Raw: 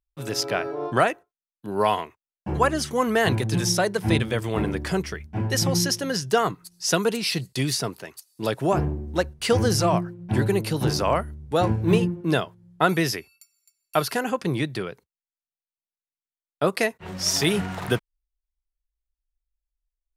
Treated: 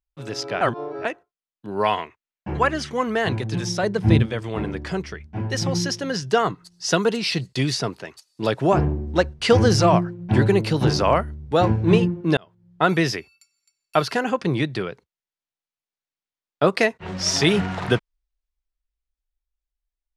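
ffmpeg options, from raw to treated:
-filter_complex "[0:a]asettb=1/sr,asplit=3[a][b][c];[a]atrim=end=1.834[d];[b]atrim=start=1.83:end=3.02,asetpts=PTS-STARTPTS,afade=t=in:d=0.004:c=qsin,afade=t=out:st=1.186:d=0.004:c=qsin,equalizer=f=2.1k:w=1.2:g=6[e];[c]atrim=start=3.016[f];[d][e]acrossfade=d=0.004:c1=hsin:c2=qsin[g];[g][f]acrossfade=d=0.004:c1=qsin:c2=hsin,asettb=1/sr,asplit=3[h][i][j];[h]atrim=end=3.834[k];[i]atrim=start=3.83:end=4.26,asetpts=PTS-STARTPTS,afade=t=in:d=0.004:c=qsin,afade=t=out:st=0.426:d=0.004:c=qsin,lowshelf=f=330:g=10.5[l];[j]atrim=start=4.256[m];[k][l]acrossfade=d=0.004:c1=hsin:c2=qsin[n];[n][m]acrossfade=d=0.004:c1=qsin:c2=hsin,asettb=1/sr,asplit=3[o][p][q];[o]atrim=end=6.424[r];[p]atrim=start=6.42:end=7.19,asetpts=PTS-STARTPTS,afade=t=in:d=0.004:c=qsin,afade=t=out:st=0.766:d=0.004:c=qsin,bandreject=f=2.4k:w=12[s];[q]atrim=start=7.186[t];[r][s]acrossfade=d=0.004:c1=hsin:c2=qsin[u];[u][t]acrossfade=d=0.004:c1=qsin:c2=hsin,asplit=4[v][w][x][y];[v]atrim=end=0.612[z];[w]atrim=start=0.608:end=1.052,asetpts=PTS-STARTPTS,areverse[aa];[x]atrim=start=1.048:end=12.37,asetpts=PTS-STARTPTS,afade=t=out:st=11.318:d=0.004:c=hsin[ab];[y]atrim=start=12.37,asetpts=PTS-STARTPTS,afade=t=in:d=0.57[ac];[z][aa]acrossfade=d=0.004:c1=hsin:c2=hsin[ad];[ab][ac]concat=n=2:v=0:a=1[ae];[ad][ae]acrossfade=d=0.004:c1=hsin:c2=hsin,lowpass=5.6k,dynaudnorm=f=220:g=17:m=11.5dB,volume=-1.5dB"

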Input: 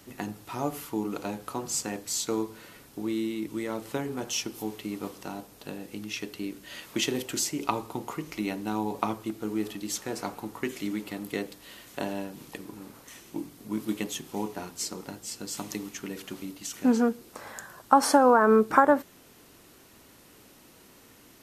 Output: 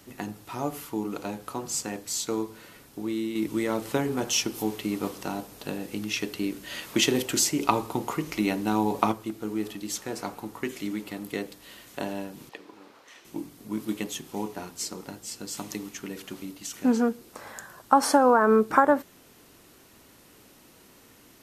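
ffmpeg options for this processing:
-filter_complex "[0:a]asettb=1/sr,asplit=3[a][b][c];[a]atrim=end=3.354[d];[b]atrim=start=3.35:end=9.12,asetpts=PTS-STARTPTS,afade=t=in:d=0.004:c=qsin,afade=t=out:st=5.766:d=0.004:c=qsin,acontrast=35[e];[c]atrim=start=9.116[f];[d][e]acrossfade=d=0.004:c1=hsin:c2=qsin[g];[g][f]acrossfade=d=0.004:c1=qsin:c2=hsin,asettb=1/sr,asplit=3[h][i][j];[h]atrim=end=12.494[k];[i]atrim=start=12.49:end=13.25,asetpts=PTS-STARTPTS,afade=t=in:d=0.004:c=qsin,afade=t=out:st=0.756:d=0.004:c=qsin,acrossover=split=350 5400:gain=0.126 1 0.141[l][m][n];[l][m][n]amix=inputs=3:normalize=0[o];[j]atrim=start=13.246[p];[k][o]acrossfade=d=0.004:c1=hsin:c2=qsin[q];[q][p]acrossfade=d=0.004:c1=qsin:c2=hsin"

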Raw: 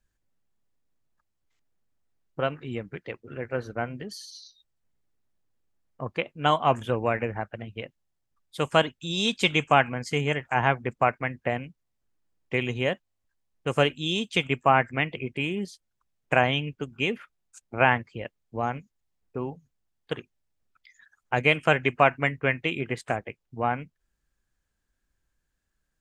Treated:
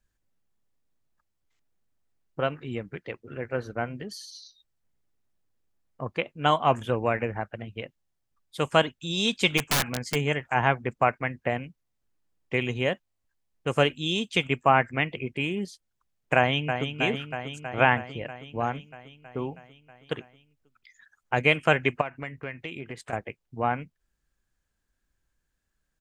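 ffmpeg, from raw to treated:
-filter_complex "[0:a]asplit=3[a][b][c];[a]afade=t=out:st=9.57:d=0.02[d];[b]aeval=exprs='(mod(7.5*val(0)+1,2)-1)/7.5':c=same,afade=t=in:st=9.57:d=0.02,afade=t=out:st=10.14:d=0.02[e];[c]afade=t=in:st=10.14:d=0.02[f];[d][e][f]amix=inputs=3:normalize=0,asplit=2[g][h];[h]afade=t=in:st=16.36:d=0.01,afade=t=out:st=16.99:d=0.01,aecho=0:1:320|640|960|1280|1600|1920|2240|2560|2880|3200|3520|3840:0.421697|0.316272|0.237204|0.177903|0.133427|0.100071|0.0750529|0.0562897|0.0422173|0.0316629|0.0237472|0.0178104[i];[g][i]amix=inputs=2:normalize=0,asettb=1/sr,asplit=3[j][k][l];[j]atrim=end=22.014[m];[k]atrim=start=22.01:end=23.13,asetpts=PTS-STARTPTS,afade=t=in:d=0.004:c=qsin,afade=t=out:st=1.116:d=0.004:c=qsin,acompressor=threshold=-36dB:ratio=2.5:attack=3.2:release=140:knee=1:detection=peak[n];[l]atrim=start=23.126[o];[m][n]acrossfade=d=0.004:c1=hsin:c2=qsin[p];[p][o]acrossfade=d=0.004:c1=qsin:c2=hsin"

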